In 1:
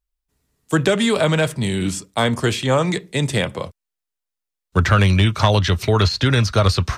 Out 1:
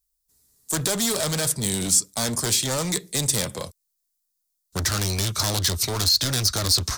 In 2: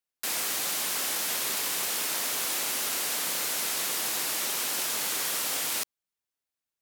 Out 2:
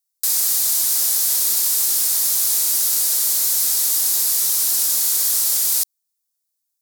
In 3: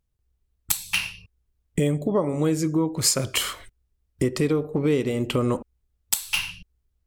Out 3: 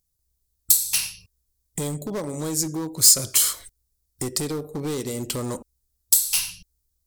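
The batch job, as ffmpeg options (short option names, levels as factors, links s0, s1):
-af "asoftclip=type=hard:threshold=0.1,aexciter=amount=5.3:drive=5.9:freq=4000,volume=0.596"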